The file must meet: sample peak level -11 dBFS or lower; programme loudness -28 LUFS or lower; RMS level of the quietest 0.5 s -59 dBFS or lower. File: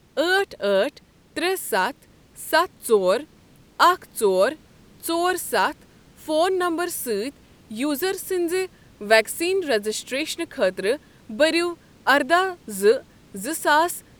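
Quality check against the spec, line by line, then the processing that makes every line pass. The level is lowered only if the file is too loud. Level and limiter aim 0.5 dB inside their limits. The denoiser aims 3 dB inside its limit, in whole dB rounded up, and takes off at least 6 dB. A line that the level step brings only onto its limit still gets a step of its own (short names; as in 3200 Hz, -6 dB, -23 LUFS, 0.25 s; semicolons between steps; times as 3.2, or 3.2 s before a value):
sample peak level -2.0 dBFS: fail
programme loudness -22.5 LUFS: fail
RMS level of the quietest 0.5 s -53 dBFS: fail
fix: denoiser 6 dB, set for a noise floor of -53 dBFS; gain -6 dB; limiter -11.5 dBFS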